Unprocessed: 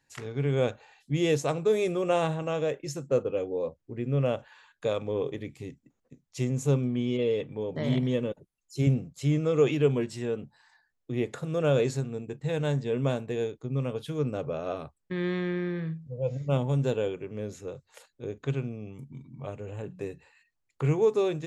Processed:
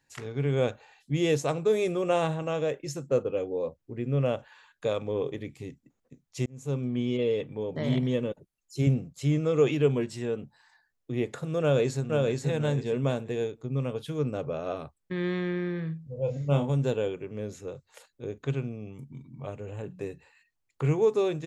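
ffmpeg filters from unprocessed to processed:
-filter_complex "[0:a]asplit=2[a][b];[b]afade=t=in:st=11.61:d=0.01,afade=t=out:st=12.44:d=0.01,aecho=0:1:480|960|1440:0.749894|0.149979|0.0299958[c];[a][c]amix=inputs=2:normalize=0,asettb=1/sr,asplit=3[d][e][f];[d]atrim=end=16.054[g];[e]atrim=start=16.05:end=16.7,asetpts=PTS-STARTPTS,afade=t=in:d=0.004:c=qsin,afade=t=out:st=0.646:d=0.004:c=qsin,asplit=2[h][i];[i]adelay=28,volume=-6dB[j];[h][j]amix=inputs=2:normalize=0,atrim=end_sample=28665[k];[f]atrim=start=16.696[l];[g][k]acrossfade=d=0.004:c1=hsin:c2=qsin[m];[m][l]acrossfade=d=0.004:c1=qsin:c2=hsin,asplit=2[n][o];[n]atrim=end=6.46,asetpts=PTS-STARTPTS,afade=t=out:st=6.456:d=0.004:c=hsin[p];[o]atrim=start=6.46,asetpts=PTS-STARTPTS,afade=t=in:d=0.52[q];[p][q]concat=n=2:v=0:a=1"

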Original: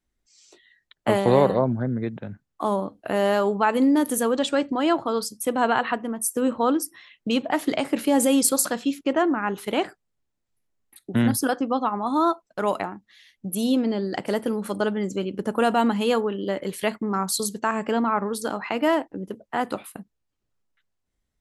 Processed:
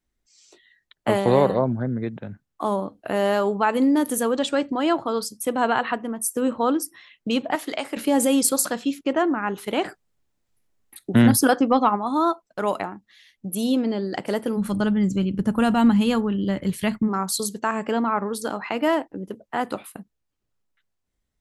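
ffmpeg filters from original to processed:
-filter_complex "[0:a]asettb=1/sr,asplit=3[a][b][c];[a]atrim=end=7.554[d];[b]atrim=start=7.55:end=7.97,asetpts=PTS-STARTPTS,afade=t=in:d=0.004:c=qsin,afade=t=out:st=0.416:d=0.004:c=qsin,highpass=f=650:p=1[e];[c]atrim=start=7.966[f];[d][e]acrossfade=d=0.004:c1=hsin:c2=qsin[g];[g][f]acrossfade=d=0.004:c1=qsin:c2=hsin,asplit=3[h][i][j];[h]afade=t=out:st=9.84:d=0.02[k];[i]acontrast=49,afade=t=in:st=9.84:d=0.02,afade=t=out:st=11.95:d=0.02[l];[j]afade=t=in:st=11.95:d=0.02[m];[k][l][m]amix=inputs=3:normalize=0,asplit=3[n][o][p];[n]afade=t=out:st=14.56:d=0.02[q];[o]asubboost=boost=9:cutoff=150,afade=t=in:st=14.56:d=0.02,afade=t=out:st=17.07:d=0.02[r];[p]afade=t=in:st=17.07:d=0.02[s];[q][r][s]amix=inputs=3:normalize=0"

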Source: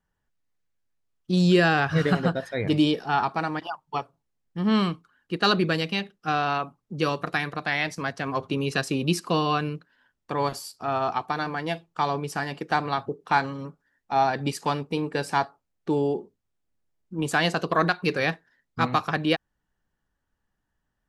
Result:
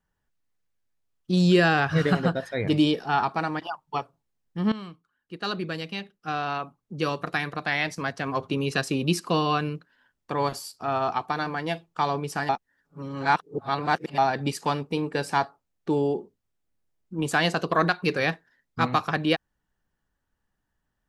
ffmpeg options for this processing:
-filter_complex "[0:a]asplit=4[a][b][c][d];[a]atrim=end=4.72,asetpts=PTS-STARTPTS,afade=t=out:st=4.716:d=0.004:c=hsin:silence=0.141254[e];[b]atrim=start=4.72:end=12.492,asetpts=PTS-STARTPTS,afade=t=in:d=3:silence=0.141254[f];[c]atrim=start=12.488:end=14.182,asetpts=PTS-STARTPTS,areverse[g];[d]atrim=start=14.178[h];[e][f]concat=n=2:v=0:a=1[i];[i][g]acrossfade=d=0.004:c1=hsin:c2=hsin[j];[j][h]acrossfade=d=0.004:c1=hsin:c2=hsin"

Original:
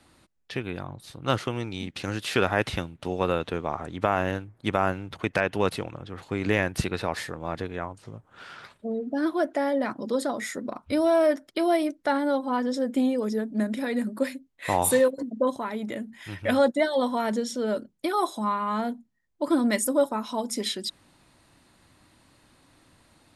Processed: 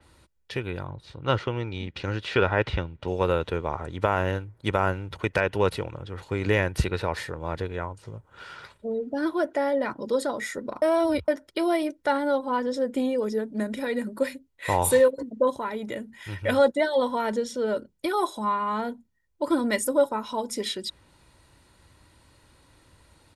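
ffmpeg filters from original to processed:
-filter_complex "[0:a]asettb=1/sr,asplit=3[a][b][c];[a]atrim=end=0.904[d];[b]atrim=start=0.9:end=3.08,asetpts=PTS-STARTPTS,afade=t=in:d=0.004:c=qsin,afade=t=out:st=2.176:d=0.004:c=qsin,lowpass=4k[e];[c]atrim=start=3.076[f];[d][e]acrossfade=d=0.004:c1=hsin:c2=qsin[g];[g][f]acrossfade=d=0.004:c1=qsin:c2=hsin,asplit=3[h][i][j];[h]atrim=end=10.822[k];[i]atrim=start=10.818:end=11.282,asetpts=PTS-STARTPTS,areverse[l];[j]atrim=start=11.278[m];[k][l]acrossfade=d=0.004:c1=hsin:c2=hsin[n];[n][m]acrossfade=d=0.004:c1=hsin:c2=hsin,equalizer=f=61:w=1.2:g=8,aecho=1:1:2.1:0.37,adynamicequalizer=threshold=0.00631:dfrequency=4300:dqfactor=0.7:tfrequency=4300:tqfactor=0.7:attack=5:release=100:ratio=0.375:range=2.5:mode=cutabove:tftype=highshelf"

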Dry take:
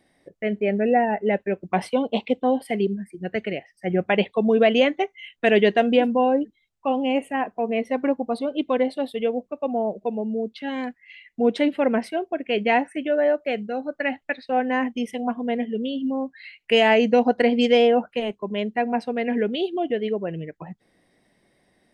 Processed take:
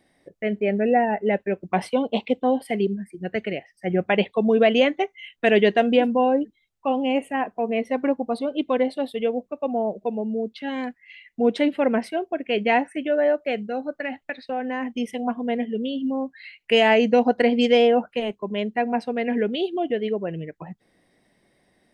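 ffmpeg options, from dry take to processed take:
-filter_complex "[0:a]asettb=1/sr,asplit=3[a][b][c];[a]atrim=end=13.934[d];[b]atrim=start=13.93:end=14.92,asetpts=PTS-STARTPTS,afade=t=in:d=0.004:c=qsin,afade=t=out:st=0.986:d=0.004:c=qsin,acompressor=threshold=-25dB:ratio=3:attack=3.2:release=140:knee=1:detection=peak[e];[c]atrim=start=14.916[f];[d][e]acrossfade=d=0.004:c1=hsin:c2=qsin[g];[g][f]acrossfade=d=0.004:c1=qsin:c2=hsin"

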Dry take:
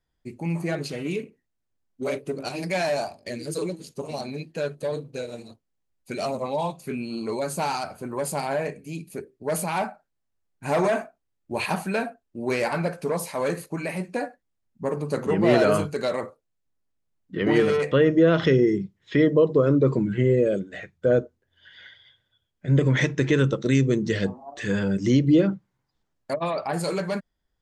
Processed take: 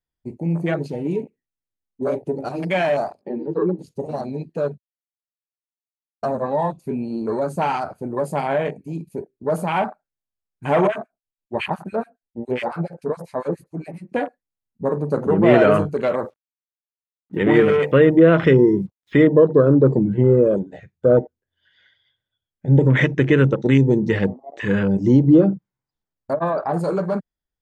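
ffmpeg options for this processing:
-filter_complex "[0:a]asettb=1/sr,asplit=3[a][b][c];[a]atrim=end=3.214[d];[b]atrim=start=3.21:end=3.79,asetpts=PTS-STARTPTS,afade=t=in:d=0.004:c=qsin,afade=t=out:st=0.576:d=0.004:c=qsin,highpass=f=180:w=0.5412,highpass=f=180:w=1.3066,equalizer=f=190:t=q:w=4:g=8,equalizer=f=380:t=q:w=4:g=7,equalizer=f=610:t=q:w=4:g=-7,equalizer=f=1.1k:t=q:w=4:g=8,equalizer=f=2.2k:t=q:w=4:g=-8,lowpass=f=2.6k:w=0.5412,lowpass=f=2.6k:w=1.3066[e];[c]atrim=start=3.786[f];[d][e]acrossfade=d=0.004:c1=hsin:c2=qsin[g];[g][f]acrossfade=d=0.004:c1=qsin:c2=hsin,asettb=1/sr,asplit=3[h][i][j];[h]atrim=end=10.874[k];[i]atrim=start=10.87:end=14.12,asetpts=PTS-STARTPTS,afade=t=in:d=0.004:c=qsin,afade=t=out:st=3.246:d=0.004:c=qsin,acrossover=split=1300[l][m];[l]aeval=exprs='val(0)*(1-1/2+1/2*cos(2*PI*7.2*n/s))':c=same[n];[m]aeval=exprs='val(0)*(1-1/2-1/2*cos(2*PI*7.2*n/s))':c=same[o];[n][o]amix=inputs=2:normalize=0[p];[j]atrim=start=14.116[q];[k][p]acrossfade=d=0.004:c1=hsin:c2=qsin[r];[r][q]acrossfade=d=0.004:c1=qsin:c2=hsin,asettb=1/sr,asplit=3[s][t][u];[s]atrim=end=16.034[v];[t]atrim=start=16.03:end=19.27,asetpts=PTS-STARTPTS,afade=t=in:d=0.004:c=qsin,afade=t=out:st=3.236:d=0.004:c=qsin,acrusher=bits=8:mix=0:aa=0.5[w];[u]atrim=start=19.266[x];[v][w]acrossfade=d=0.004:c1=hsin:c2=qsin[y];[y][x]acrossfade=d=0.004:c1=qsin:c2=hsin,asplit=3[z][aa][ab];[z]atrim=end=4.78,asetpts=PTS-STARTPTS,afade=t=out:st=4.776:d=0.004:c=hsin[ac];[aa]atrim=start=4.78:end=6.23,asetpts=PTS-STARTPTS,volume=0[ad];[ab]atrim=start=6.23,asetpts=PTS-STARTPTS,afade=t=in:d=0.004:c=hsin[ae];[ac][ad][ae]concat=n=3:v=0:a=1,afwtdn=0.0224,volume=5.5dB"

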